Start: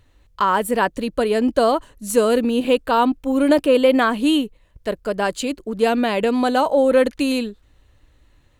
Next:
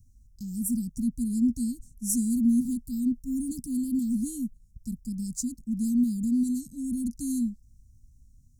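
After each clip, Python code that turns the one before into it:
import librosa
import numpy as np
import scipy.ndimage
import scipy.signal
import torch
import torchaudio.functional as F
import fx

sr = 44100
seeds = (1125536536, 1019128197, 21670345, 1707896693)

y = scipy.signal.sosfilt(scipy.signal.cheby1(5, 1.0, [240.0, 5400.0], 'bandstop', fs=sr, output='sos'), x)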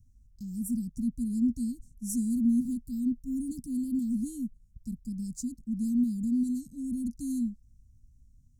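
y = fx.high_shelf(x, sr, hz=3300.0, db=-6.5)
y = y * 10.0 ** (-2.5 / 20.0)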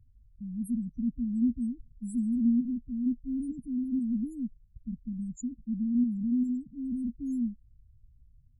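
y = fx.spec_topn(x, sr, count=8)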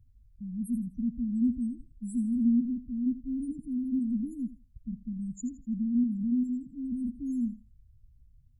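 y = fx.echo_thinned(x, sr, ms=82, feedback_pct=29, hz=410.0, wet_db=-10.5)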